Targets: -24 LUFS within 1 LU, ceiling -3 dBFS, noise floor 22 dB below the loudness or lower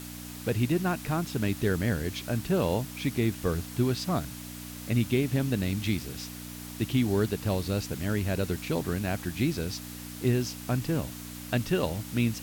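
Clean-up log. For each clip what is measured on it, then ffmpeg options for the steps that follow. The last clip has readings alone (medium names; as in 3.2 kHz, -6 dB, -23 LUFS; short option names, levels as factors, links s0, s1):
hum 60 Hz; highest harmonic 300 Hz; hum level -39 dBFS; noise floor -42 dBFS; noise floor target -52 dBFS; loudness -29.5 LUFS; peak level -13.5 dBFS; loudness target -24.0 LUFS
-> -af "bandreject=f=60:t=h:w=4,bandreject=f=120:t=h:w=4,bandreject=f=180:t=h:w=4,bandreject=f=240:t=h:w=4,bandreject=f=300:t=h:w=4"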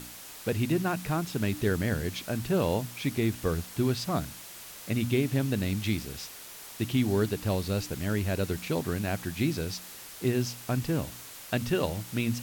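hum not found; noise floor -45 dBFS; noise floor target -52 dBFS
-> -af "afftdn=nr=7:nf=-45"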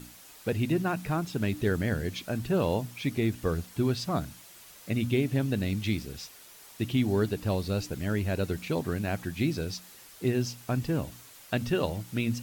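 noise floor -51 dBFS; noise floor target -52 dBFS
-> -af "afftdn=nr=6:nf=-51"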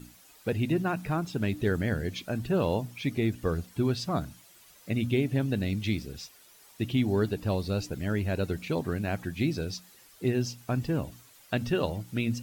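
noise floor -56 dBFS; loudness -30.0 LUFS; peak level -15.0 dBFS; loudness target -24.0 LUFS
-> -af "volume=2"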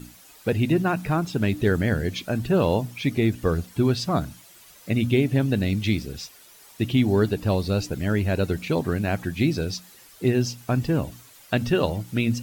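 loudness -24.0 LUFS; peak level -9.0 dBFS; noise floor -50 dBFS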